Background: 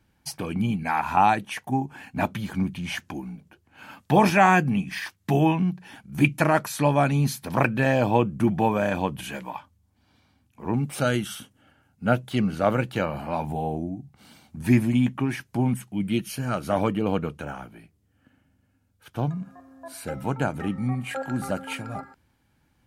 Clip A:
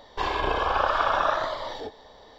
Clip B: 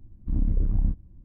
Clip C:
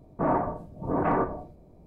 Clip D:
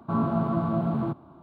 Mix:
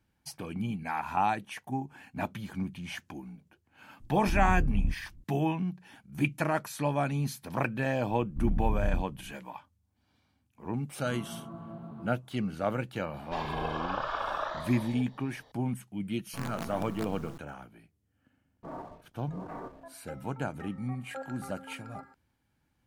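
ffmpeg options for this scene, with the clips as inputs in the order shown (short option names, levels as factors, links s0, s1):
-filter_complex "[2:a]asplit=2[s0][s1];[4:a]asplit=2[s2][s3];[0:a]volume=0.376[s4];[s3]acrusher=bits=4:dc=4:mix=0:aa=0.000001[s5];[3:a]aeval=exprs='sgn(val(0))*max(abs(val(0))-0.00531,0)':c=same[s6];[s0]atrim=end=1.24,asetpts=PTS-STARTPTS,volume=0.596,afade=t=in:d=0.004:c=hsin,afade=t=out:st=1.236:d=0.004:c=hsin,adelay=4000[s7];[s1]atrim=end=1.24,asetpts=PTS-STARTPTS,volume=0.531,afade=t=in:d=0.004:c=hsin,afade=t=out:st=1.236:d=0.004:c=hsin,adelay=8090[s8];[s2]atrim=end=1.42,asetpts=PTS-STARTPTS,volume=0.133,afade=t=in:d=0.004:c=hsin,afade=t=out:st=1.416:d=0.004:c=hsin,adelay=10970[s9];[1:a]atrim=end=2.38,asetpts=PTS-STARTPTS,volume=0.316,afade=t=in:d=0.004:c=hsin,afade=t=out:st=2.376:d=0.004:c=hsin,adelay=13140[s10];[s5]atrim=end=1.42,asetpts=PTS-STARTPTS,volume=0.224,afade=t=in:d=0.004:c=hsin,afade=t=out:st=1.416:d=0.004:c=hsin,adelay=16250[s11];[s6]atrim=end=1.86,asetpts=PTS-STARTPTS,volume=0.15,afade=t=in:d=0.004:c=hsin,afade=t=out:st=1.856:d=0.004:c=hsin,adelay=813204S[s12];[s4][s7][s8][s9][s10][s11][s12]amix=inputs=7:normalize=0"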